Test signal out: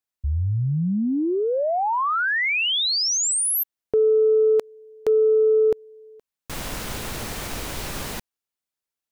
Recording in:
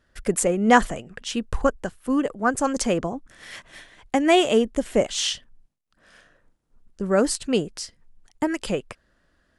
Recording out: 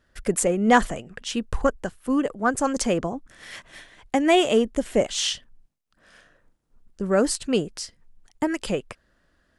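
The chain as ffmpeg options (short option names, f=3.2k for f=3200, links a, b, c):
-af "acontrast=22,volume=-5dB"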